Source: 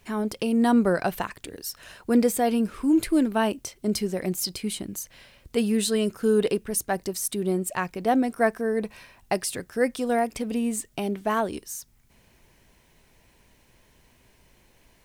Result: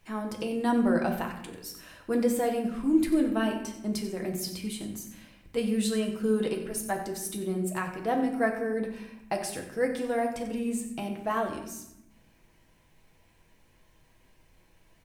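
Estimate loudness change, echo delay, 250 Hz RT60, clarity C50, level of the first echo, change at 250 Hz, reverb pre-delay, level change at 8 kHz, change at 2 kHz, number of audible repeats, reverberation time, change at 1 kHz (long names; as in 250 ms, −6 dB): −4.0 dB, 92 ms, 1.3 s, 7.0 dB, −13.5 dB, −4.0 dB, 4 ms, −7.0 dB, −3.5 dB, 1, 0.85 s, −4.5 dB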